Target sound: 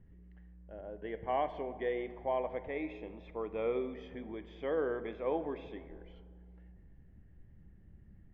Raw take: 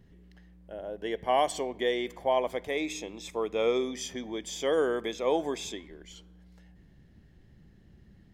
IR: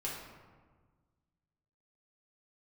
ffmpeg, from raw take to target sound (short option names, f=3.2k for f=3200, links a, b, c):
-filter_complex "[0:a]lowpass=f=2.4k:w=0.5412,lowpass=f=2.4k:w=1.3066,lowshelf=f=100:g=12,asplit=2[a][b];[1:a]atrim=start_sample=2205,asetrate=28665,aresample=44100[c];[b][c]afir=irnorm=-1:irlink=0,volume=-14.5dB[d];[a][d]amix=inputs=2:normalize=0,volume=-9dB"